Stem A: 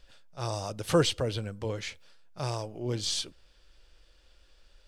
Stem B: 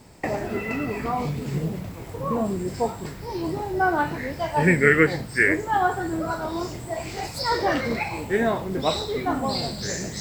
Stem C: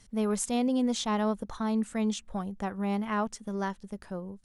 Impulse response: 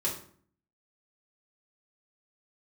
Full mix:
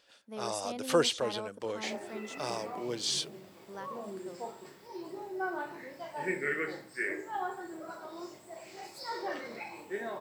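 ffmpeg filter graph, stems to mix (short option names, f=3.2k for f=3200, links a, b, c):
-filter_complex "[0:a]volume=-0.5dB[a];[1:a]adelay=1600,volume=-19dB,asplit=2[b][c];[c]volume=-5.5dB[d];[2:a]adelay=150,volume=-10dB,asplit=3[e][f][g];[e]atrim=end=2.79,asetpts=PTS-STARTPTS,afade=t=out:st=2.786:d=0.004:c=hsin[h];[f]atrim=start=2.79:end=3.68,asetpts=PTS-STARTPTS,volume=0[i];[g]atrim=start=3.68,asetpts=PTS-STARTPTS,afade=t=in:d=0.004:c=hsin[j];[h][i][j]concat=n=3:v=0:a=1[k];[3:a]atrim=start_sample=2205[l];[d][l]afir=irnorm=-1:irlink=0[m];[a][b][k][m]amix=inputs=4:normalize=0,highpass=310"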